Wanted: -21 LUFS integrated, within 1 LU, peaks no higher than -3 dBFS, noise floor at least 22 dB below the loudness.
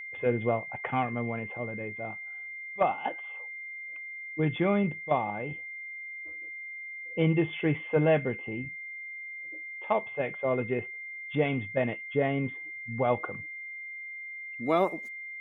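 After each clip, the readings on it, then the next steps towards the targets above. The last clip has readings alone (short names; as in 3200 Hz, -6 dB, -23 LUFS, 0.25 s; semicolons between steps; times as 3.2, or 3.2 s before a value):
steady tone 2100 Hz; tone level -38 dBFS; loudness -31.5 LUFS; peak -12.5 dBFS; loudness target -21.0 LUFS
-> notch 2100 Hz, Q 30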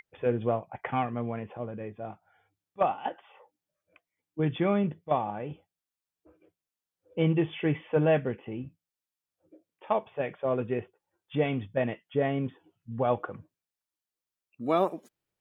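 steady tone none; loudness -30.5 LUFS; peak -13.0 dBFS; loudness target -21.0 LUFS
-> gain +9.5 dB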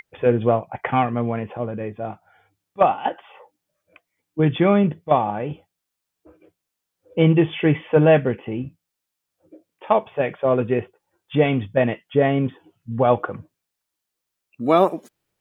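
loudness -21.0 LUFS; peak -3.5 dBFS; noise floor -82 dBFS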